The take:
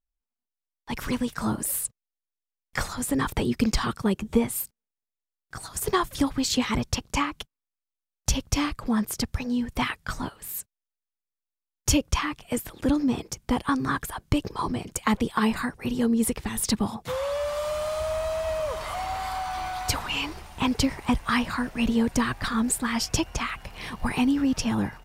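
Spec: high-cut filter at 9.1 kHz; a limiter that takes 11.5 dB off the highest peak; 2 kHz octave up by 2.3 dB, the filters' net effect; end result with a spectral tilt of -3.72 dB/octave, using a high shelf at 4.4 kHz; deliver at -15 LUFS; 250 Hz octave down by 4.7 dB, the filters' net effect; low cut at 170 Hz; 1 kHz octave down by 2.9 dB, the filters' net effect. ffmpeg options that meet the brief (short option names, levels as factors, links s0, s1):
-af "highpass=170,lowpass=9100,equalizer=f=250:t=o:g=-4,equalizer=f=1000:t=o:g=-4.5,equalizer=f=2000:t=o:g=6,highshelf=f=4400:g=-8.5,volume=7.08,alimiter=limit=0.708:level=0:latency=1"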